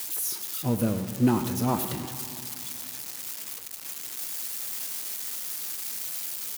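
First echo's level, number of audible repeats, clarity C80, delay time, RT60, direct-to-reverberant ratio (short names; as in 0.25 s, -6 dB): -13.5 dB, 1, 9.5 dB, 0.101 s, 2.7 s, 7.5 dB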